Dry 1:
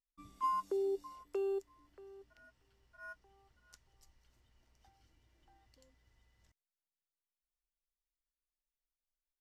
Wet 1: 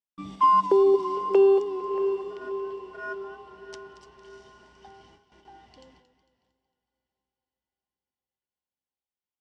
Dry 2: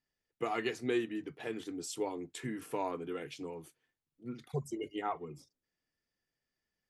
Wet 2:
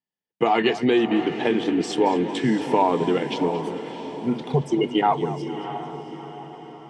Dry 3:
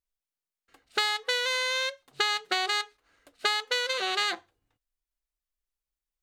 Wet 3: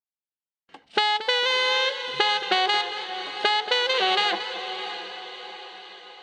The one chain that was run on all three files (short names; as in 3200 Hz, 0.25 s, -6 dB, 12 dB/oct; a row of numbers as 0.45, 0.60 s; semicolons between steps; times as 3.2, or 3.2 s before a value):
high shelf 2200 Hz -5 dB; in parallel at +0.5 dB: level quantiser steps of 21 dB; on the sum: speaker cabinet 110–7500 Hz, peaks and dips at 110 Hz -5 dB, 190 Hz +8 dB, 870 Hz +8 dB, 1300 Hz -5 dB, 3100 Hz +7 dB, 6900 Hz -7 dB; compressor 2:1, threshold -31 dBFS; on a send: diffused feedback echo 0.67 s, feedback 50%, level -10.5 dB; on the sum: gate with hold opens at -60 dBFS; warbling echo 0.227 s, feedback 42%, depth 78 cents, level -14 dB; match loudness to -23 LUFS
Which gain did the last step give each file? +14.0, +14.0, +8.5 dB